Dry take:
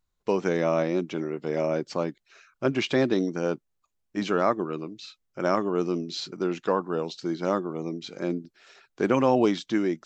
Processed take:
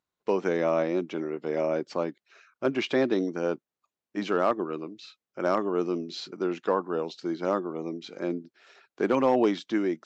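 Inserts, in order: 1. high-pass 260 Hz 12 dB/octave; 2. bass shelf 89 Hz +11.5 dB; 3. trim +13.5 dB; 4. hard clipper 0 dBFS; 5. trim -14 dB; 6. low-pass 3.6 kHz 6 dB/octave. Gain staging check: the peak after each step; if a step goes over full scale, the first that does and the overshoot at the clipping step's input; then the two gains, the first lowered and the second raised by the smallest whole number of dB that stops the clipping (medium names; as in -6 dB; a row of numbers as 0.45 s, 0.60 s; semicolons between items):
-9.5 dBFS, -9.0 dBFS, +4.5 dBFS, 0.0 dBFS, -14.0 dBFS, -14.0 dBFS; step 3, 4.5 dB; step 3 +8.5 dB, step 5 -9 dB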